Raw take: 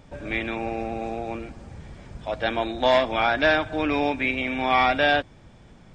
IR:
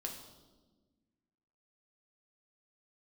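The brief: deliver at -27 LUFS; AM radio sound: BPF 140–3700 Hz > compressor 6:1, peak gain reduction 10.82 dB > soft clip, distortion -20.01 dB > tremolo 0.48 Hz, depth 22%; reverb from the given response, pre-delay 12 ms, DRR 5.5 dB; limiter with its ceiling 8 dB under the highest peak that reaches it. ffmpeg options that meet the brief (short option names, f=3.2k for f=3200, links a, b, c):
-filter_complex "[0:a]alimiter=limit=-14.5dB:level=0:latency=1,asplit=2[a][b];[1:a]atrim=start_sample=2205,adelay=12[c];[b][c]afir=irnorm=-1:irlink=0,volume=-4.5dB[d];[a][d]amix=inputs=2:normalize=0,highpass=140,lowpass=3.7k,acompressor=threshold=-29dB:ratio=6,asoftclip=threshold=-24.5dB,tremolo=f=0.48:d=0.22,volume=8.5dB"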